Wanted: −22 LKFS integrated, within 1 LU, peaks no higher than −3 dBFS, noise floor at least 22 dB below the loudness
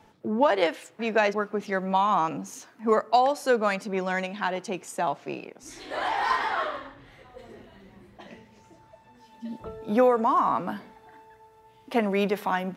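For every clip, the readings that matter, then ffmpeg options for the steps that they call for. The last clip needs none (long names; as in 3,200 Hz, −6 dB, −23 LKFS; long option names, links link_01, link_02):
integrated loudness −26.0 LKFS; sample peak −9.5 dBFS; target loudness −22.0 LKFS
→ -af "volume=4dB"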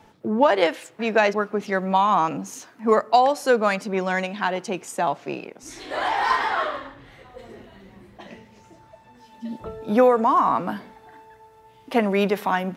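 integrated loudness −22.0 LKFS; sample peak −5.5 dBFS; background noise floor −53 dBFS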